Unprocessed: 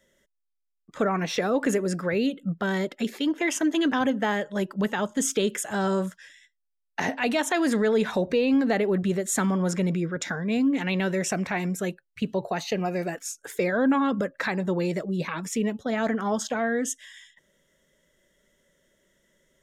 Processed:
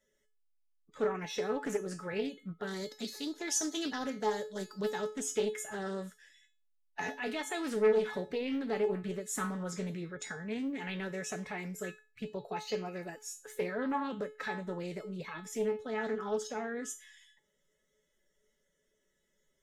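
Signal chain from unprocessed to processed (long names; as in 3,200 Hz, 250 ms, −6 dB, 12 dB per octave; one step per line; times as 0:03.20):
spectral magnitudes quantised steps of 15 dB
0:02.67–0:05.07: high shelf with overshoot 3,500 Hz +7.5 dB, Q 3
tuned comb filter 430 Hz, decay 0.32 s, harmonics all, mix 90%
highs frequency-modulated by the lows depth 0.2 ms
level +5 dB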